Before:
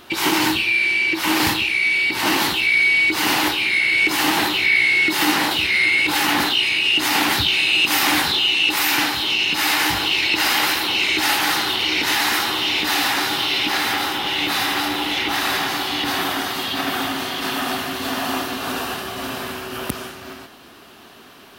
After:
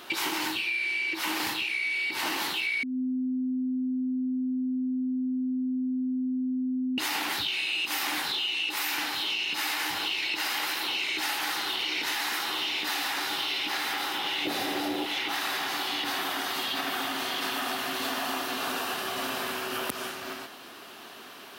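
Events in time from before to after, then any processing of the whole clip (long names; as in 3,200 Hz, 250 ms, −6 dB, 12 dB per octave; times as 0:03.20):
0:02.83–0:06.98: beep over 256 Hz −14 dBFS
0:14.45–0:15.06: low shelf with overshoot 760 Hz +9.5 dB, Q 1.5
whole clip: high-pass filter 380 Hz 6 dB per octave; downward compressor, threshold −28 dBFS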